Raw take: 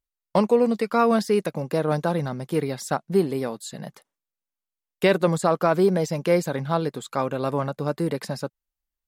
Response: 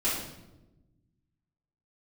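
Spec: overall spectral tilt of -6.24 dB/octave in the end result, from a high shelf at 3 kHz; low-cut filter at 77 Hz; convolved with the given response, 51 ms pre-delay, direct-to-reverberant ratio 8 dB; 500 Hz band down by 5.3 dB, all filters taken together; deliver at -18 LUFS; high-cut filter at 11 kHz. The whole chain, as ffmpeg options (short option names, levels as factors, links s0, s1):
-filter_complex "[0:a]highpass=77,lowpass=11000,equalizer=f=500:t=o:g=-6.5,highshelf=f=3000:g=-4,asplit=2[s0][s1];[1:a]atrim=start_sample=2205,adelay=51[s2];[s1][s2]afir=irnorm=-1:irlink=0,volume=0.133[s3];[s0][s3]amix=inputs=2:normalize=0,volume=2.51"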